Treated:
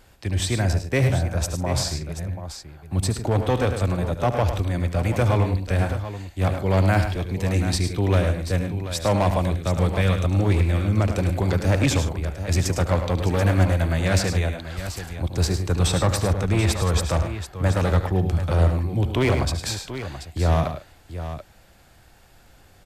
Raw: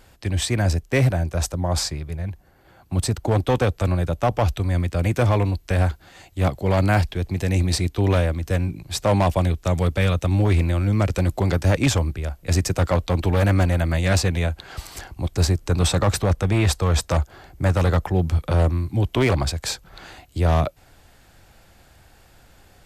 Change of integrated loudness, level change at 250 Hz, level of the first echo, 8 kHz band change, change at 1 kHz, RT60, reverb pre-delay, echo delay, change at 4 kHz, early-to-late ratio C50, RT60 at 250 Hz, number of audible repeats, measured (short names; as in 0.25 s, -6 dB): -1.0 dB, -1.0 dB, -13.0 dB, -1.0 dB, -1.0 dB, none, none, 73 ms, -1.0 dB, none, none, 4